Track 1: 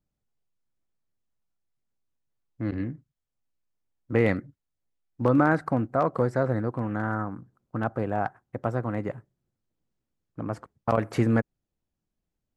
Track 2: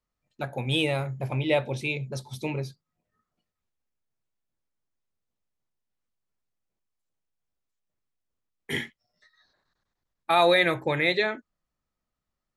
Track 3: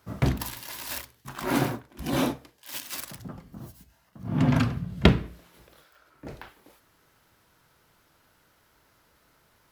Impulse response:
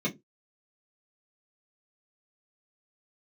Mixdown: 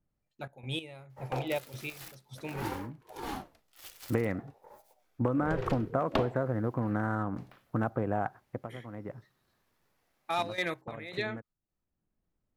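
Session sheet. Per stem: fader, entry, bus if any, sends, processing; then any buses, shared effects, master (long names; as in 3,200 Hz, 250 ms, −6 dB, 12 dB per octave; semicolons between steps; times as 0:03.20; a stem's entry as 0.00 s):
+2.0 dB, 0.00 s, no send, adaptive Wiener filter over 9 samples; parametric band 4,700 Hz −12.5 dB 0.63 octaves; downward compressor 12 to 1, threshold −27 dBFS, peak gain reduction 12 dB; automatic ducking −13 dB, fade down 0.20 s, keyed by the second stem
−9.0 dB, 0.00 s, no send, hard clipping −14 dBFS, distortion −21 dB; gate pattern ".xxxxx..xx...." 190 BPM −12 dB
−10.0 dB, 1.10 s, no send, ring modulator whose carrier an LFO sweeps 480 Hz, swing 50%, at 0.54 Hz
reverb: not used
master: no processing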